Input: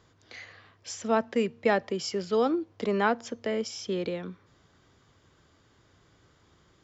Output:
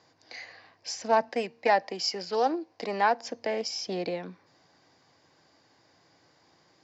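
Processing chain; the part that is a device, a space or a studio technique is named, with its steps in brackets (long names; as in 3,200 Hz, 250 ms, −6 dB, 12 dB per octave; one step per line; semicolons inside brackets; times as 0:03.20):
0:01.29–0:03.24: low-shelf EQ 240 Hz −9 dB
full-range speaker at full volume (highs frequency-modulated by the lows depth 0.18 ms; loudspeaker in its box 220–6,500 Hz, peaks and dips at 220 Hz −6 dB, 400 Hz −7 dB, 780 Hz +5 dB, 1,300 Hz −9 dB, 3,300 Hz −9 dB, 4,800 Hz +7 dB)
level +3 dB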